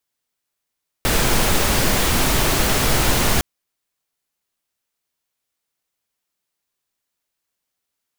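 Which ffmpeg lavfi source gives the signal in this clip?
-f lavfi -i "anoisesrc=c=pink:a=0.724:d=2.36:r=44100:seed=1"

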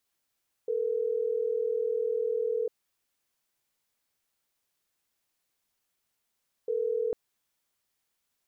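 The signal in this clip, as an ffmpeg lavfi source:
-f lavfi -i "aevalsrc='0.0355*(sin(2*PI*440*t)+sin(2*PI*480*t))*clip(min(mod(t,6),2-mod(t,6))/0.005,0,1)':d=6.45:s=44100"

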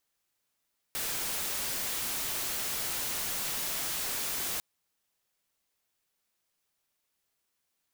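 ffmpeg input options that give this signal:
-f lavfi -i "anoisesrc=c=white:a=0.0366:d=3.65:r=44100:seed=1"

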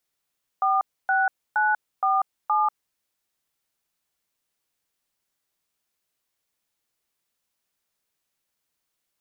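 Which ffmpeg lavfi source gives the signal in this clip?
-f lavfi -i "aevalsrc='0.0891*clip(min(mod(t,0.469),0.191-mod(t,0.469))/0.002,0,1)*(eq(floor(t/0.469),0)*(sin(2*PI*770*mod(t,0.469))+sin(2*PI*1209*mod(t,0.469)))+eq(floor(t/0.469),1)*(sin(2*PI*770*mod(t,0.469))+sin(2*PI*1477*mod(t,0.469)))+eq(floor(t/0.469),2)*(sin(2*PI*852*mod(t,0.469))+sin(2*PI*1477*mod(t,0.469)))+eq(floor(t/0.469),3)*(sin(2*PI*770*mod(t,0.469))+sin(2*PI*1209*mod(t,0.469)))+eq(floor(t/0.469),4)*(sin(2*PI*852*mod(t,0.469))+sin(2*PI*1209*mod(t,0.469))))':d=2.345:s=44100"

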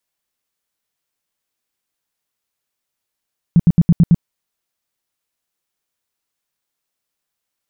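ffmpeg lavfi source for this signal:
-f lavfi -i "aevalsrc='0.531*sin(2*PI*169*mod(t,0.11))*lt(mod(t,0.11),6/169)':d=0.66:s=44100"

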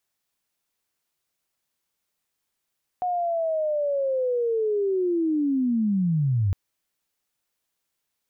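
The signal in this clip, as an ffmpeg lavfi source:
-f lavfi -i "aevalsrc='pow(10,(-22.5+3.5*t/3.51)/20)*sin(2*PI*(730*t-640*t*t/(2*3.51)))':d=3.51:s=44100"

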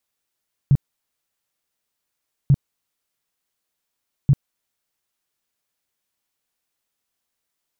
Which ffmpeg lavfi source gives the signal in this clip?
-f lavfi -i "aevalsrc='0.335*sin(2*PI*139*mod(t,1.79))*lt(mod(t,1.79),6/139)':d=5.37:s=44100"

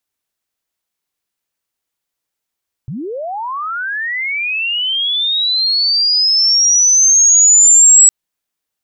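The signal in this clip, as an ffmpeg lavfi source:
-f lavfi -i "aevalsrc='pow(10,(-21.5+18.5*t/5.21)/20)*sin(2*PI*(110*t+7690*t*t/(2*5.21)))':d=5.21:s=44100"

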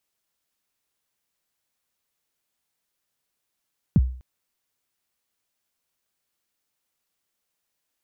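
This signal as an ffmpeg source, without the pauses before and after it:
-f lavfi -i "aevalsrc='0.316*pow(10,-3*t/0.46)*sin(2*PI*(230*0.036/log(63/230)*(exp(log(63/230)*min(t,0.036)/0.036)-1)+63*max(t-0.036,0)))':d=0.25:s=44100"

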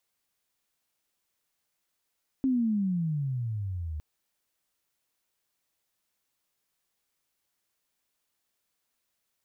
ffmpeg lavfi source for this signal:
-f lavfi -i "aevalsrc='pow(10,(-22-10*t/1.56)/20)*sin(2*PI*271*1.56/(-22.5*log(2)/12)*(exp(-22.5*log(2)/12*t/1.56)-1))':d=1.56:s=44100"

